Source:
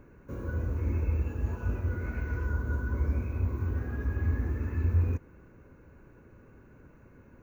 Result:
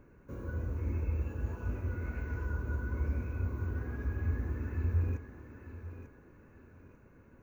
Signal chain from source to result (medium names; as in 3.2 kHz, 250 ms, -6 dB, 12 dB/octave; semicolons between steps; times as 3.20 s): thinning echo 893 ms, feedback 38%, high-pass 170 Hz, level -8.5 dB; trim -4.5 dB